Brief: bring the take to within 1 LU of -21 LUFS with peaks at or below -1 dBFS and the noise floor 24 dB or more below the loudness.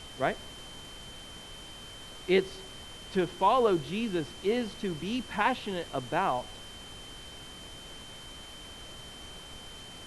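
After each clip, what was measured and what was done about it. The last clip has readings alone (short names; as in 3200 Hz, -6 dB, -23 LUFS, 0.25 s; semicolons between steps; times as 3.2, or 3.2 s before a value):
steady tone 3100 Hz; tone level -47 dBFS; noise floor -47 dBFS; noise floor target -54 dBFS; loudness -30.0 LUFS; peak -12.0 dBFS; loudness target -21.0 LUFS
-> notch 3100 Hz, Q 30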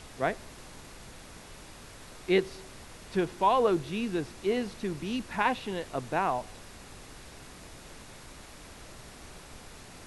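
steady tone none; noise floor -49 dBFS; noise floor target -54 dBFS
-> noise print and reduce 6 dB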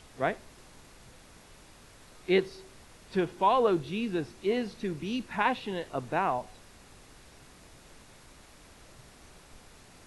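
noise floor -55 dBFS; loudness -30.0 LUFS; peak -12.0 dBFS; loudness target -21.0 LUFS
-> gain +9 dB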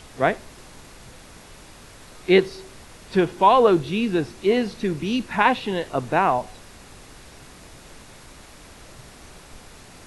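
loudness -21.0 LUFS; peak -3.0 dBFS; noise floor -46 dBFS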